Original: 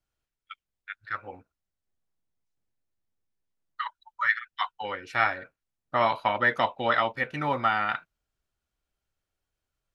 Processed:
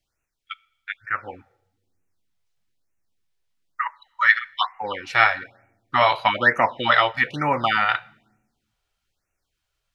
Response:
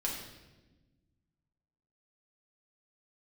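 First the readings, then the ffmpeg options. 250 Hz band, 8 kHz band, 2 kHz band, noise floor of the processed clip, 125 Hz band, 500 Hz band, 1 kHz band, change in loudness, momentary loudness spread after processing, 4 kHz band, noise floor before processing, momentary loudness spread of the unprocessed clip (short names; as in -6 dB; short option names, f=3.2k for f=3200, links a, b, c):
+4.5 dB, n/a, +8.0 dB, -80 dBFS, +4.5 dB, +4.5 dB, +6.0 dB, +6.5 dB, 16 LU, +10.0 dB, under -85 dBFS, 12 LU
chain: -filter_complex "[0:a]equalizer=f=3.4k:w=0.58:g=6.5,asplit=2[a][b];[1:a]atrim=start_sample=2205,asetrate=57330,aresample=44100[c];[b][c]afir=irnorm=-1:irlink=0,volume=-19dB[d];[a][d]amix=inputs=2:normalize=0,afftfilt=real='re*(1-between(b*sr/1024,210*pow(4100/210,0.5+0.5*sin(2*PI*1.1*pts/sr))/1.41,210*pow(4100/210,0.5+0.5*sin(2*PI*1.1*pts/sr))*1.41))':imag='im*(1-between(b*sr/1024,210*pow(4100/210,0.5+0.5*sin(2*PI*1.1*pts/sr))/1.41,210*pow(4100/210,0.5+0.5*sin(2*PI*1.1*pts/sr))*1.41))':win_size=1024:overlap=0.75,volume=4dB"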